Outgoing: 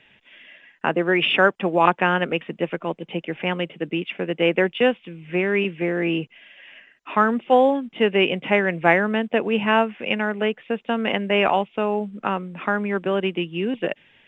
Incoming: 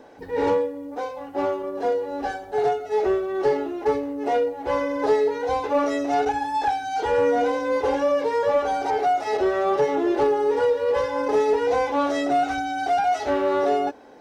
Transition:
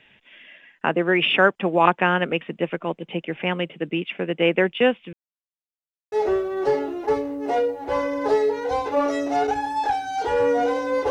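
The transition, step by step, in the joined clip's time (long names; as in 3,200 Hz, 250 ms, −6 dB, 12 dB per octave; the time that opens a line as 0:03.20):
outgoing
0:05.13–0:06.12: silence
0:06.12: continue with incoming from 0:02.90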